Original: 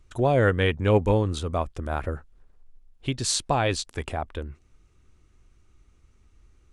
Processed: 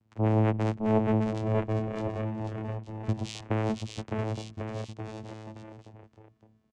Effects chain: vocoder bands 4, saw 109 Hz; on a send: bouncing-ball echo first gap 610 ms, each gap 0.8×, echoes 5; on the sum: trim -3 dB

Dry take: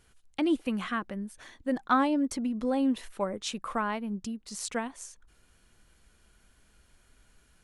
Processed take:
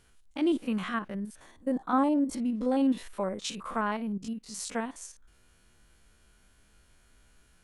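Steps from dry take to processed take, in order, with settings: spectrogram pixelated in time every 50 ms; 1.40–2.33 s: high-order bell 2.9 kHz -8 dB 2.4 oct; trim +1.5 dB

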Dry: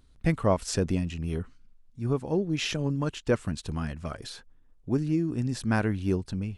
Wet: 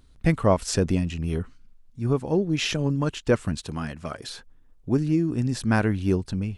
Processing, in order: 3.64–4.29 s: high-pass 180 Hz 6 dB/octave; trim +4 dB

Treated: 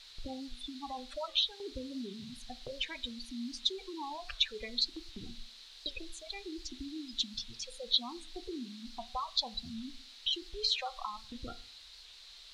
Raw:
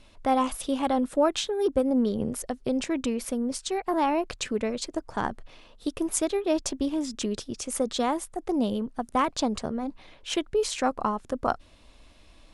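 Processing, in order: phase shifter stages 2, 0.62 Hz, lowest notch 260–1100 Hz; compression 4:1, threshold -46 dBFS, peak gain reduction 20 dB; spectral gate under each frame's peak -10 dB strong; gate with hold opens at -44 dBFS; peaking EQ 190 Hz -7.5 dB 1.8 oct; band-stop 650 Hz, Q 12; added noise blue -59 dBFS; resonant low-pass 4 kHz, resonance Q 5.5; reverberation RT60 0.40 s, pre-delay 3 ms, DRR 12 dB; warped record 78 rpm, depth 100 cents; trim +8 dB

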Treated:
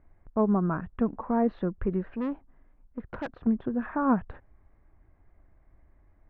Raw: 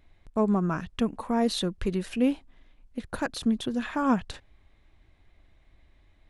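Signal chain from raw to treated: low-pass 1.6 kHz 24 dB/octave; 2.10–3.47 s: valve stage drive 27 dB, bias 0.45

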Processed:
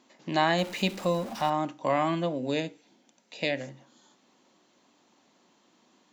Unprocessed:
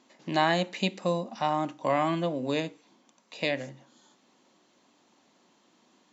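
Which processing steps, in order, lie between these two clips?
0.58–1.50 s: jump at every zero crossing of -38.5 dBFS; 2.38–3.61 s: peaking EQ 1.1 kHz -13.5 dB 0.24 oct

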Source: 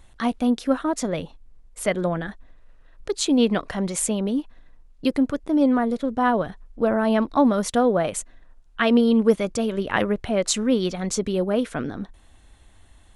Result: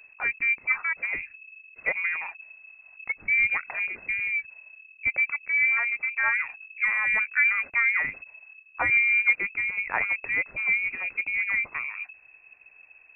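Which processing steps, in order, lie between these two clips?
frequency inversion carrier 2.6 kHz; trim -4.5 dB

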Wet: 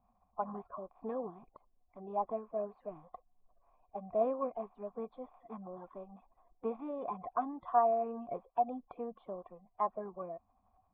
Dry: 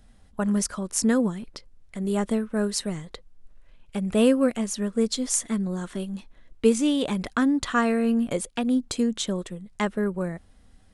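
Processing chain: coarse spectral quantiser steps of 30 dB; cascade formant filter a; trim +6 dB

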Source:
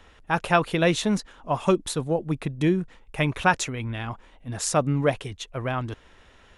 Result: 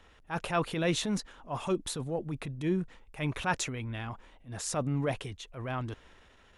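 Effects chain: transient shaper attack -8 dB, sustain +3 dB; trim -6 dB

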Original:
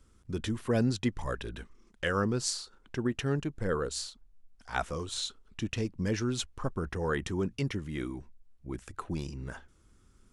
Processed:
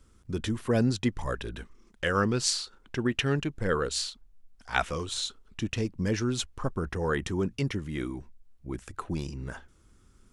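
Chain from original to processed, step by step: 2.14–5.13 s: dynamic bell 2.7 kHz, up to +8 dB, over -50 dBFS, Q 0.86; trim +2.5 dB

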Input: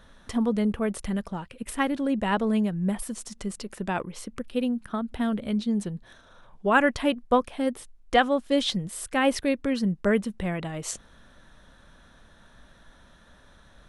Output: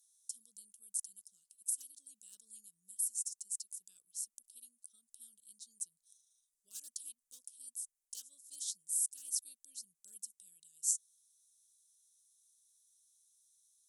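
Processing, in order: one-sided clip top -15.5 dBFS; inverse Chebyshev high-pass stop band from 2.2 kHz, stop band 60 dB; trim +4.5 dB

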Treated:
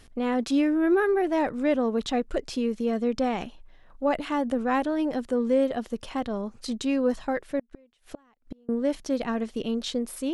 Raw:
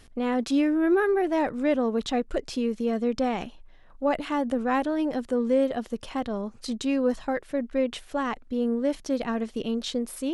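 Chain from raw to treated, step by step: 7.59–8.69 s: inverted gate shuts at -23 dBFS, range -33 dB

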